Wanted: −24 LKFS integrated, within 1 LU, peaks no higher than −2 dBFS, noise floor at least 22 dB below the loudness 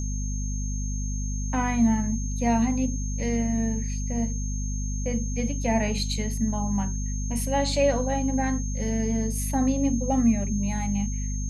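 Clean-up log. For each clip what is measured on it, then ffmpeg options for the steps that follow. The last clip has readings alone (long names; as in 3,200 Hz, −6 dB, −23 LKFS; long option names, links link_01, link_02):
mains hum 50 Hz; hum harmonics up to 250 Hz; level of the hum −26 dBFS; interfering tone 6,400 Hz; level of the tone −37 dBFS; integrated loudness −26.5 LKFS; sample peak −10.5 dBFS; target loudness −24.0 LKFS
→ -af "bandreject=frequency=50:width_type=h:width=4,bandreject=frequency=100:width_type=h:width=4,bandreject=frequency=150:width_type=h:width=4,bandreject=frequency=200:width_type=h:width=4,bandreject=frequency=250:width_type=h:width=4"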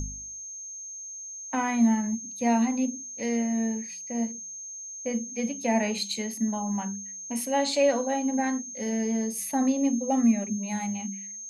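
mains hum none found; interfering tone 6,400 Hz; level of the tone −37 dBFS
→ -af "bandreject=frequency=6400:width=30"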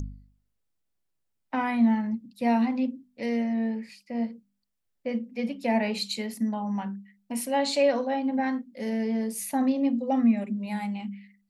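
interfering tone none found; integrated loudness −28.0 LKFS; sample peak −13.5 dBFS; target loudness −24.0 LKFS
→ -af "volume=4dB"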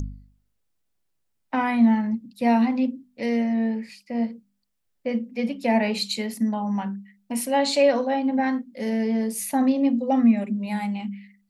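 integrated loudness −24.0 LKFS; sample peak −9.5 dBFS; background noise floor −73 dBFS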